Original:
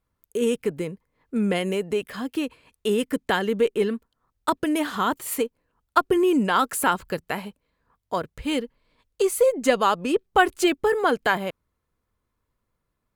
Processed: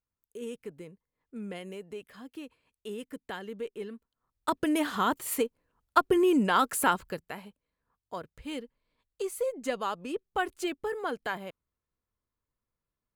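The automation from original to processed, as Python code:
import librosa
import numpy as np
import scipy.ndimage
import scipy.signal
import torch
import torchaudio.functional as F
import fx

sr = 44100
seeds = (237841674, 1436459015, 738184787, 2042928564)

y = fx.gain(x, sr, db=fx.line((3.9, -16.0), (4.64, -3.5), (6.9, -3.5), (7.34, -12.0)))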